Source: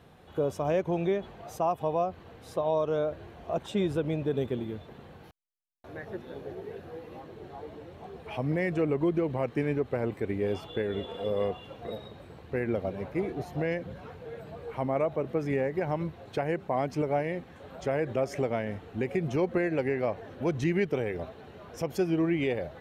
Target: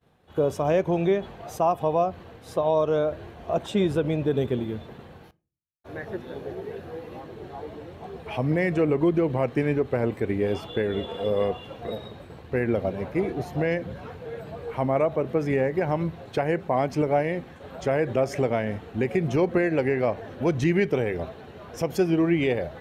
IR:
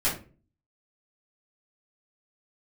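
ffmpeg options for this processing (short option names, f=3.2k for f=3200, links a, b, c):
-filter_complex "[0:a]agate=range=-33dB:threshold=-46dB:ratio=3:detection=peak,asplit=2[a][b];[1:a]atrim=start_sample=2205[c];[b][c]afir=irnorm=-1:irlink=0,volume=-29dB[d];[a][d]amix=inputs=2:normalize=0,volume=5dB"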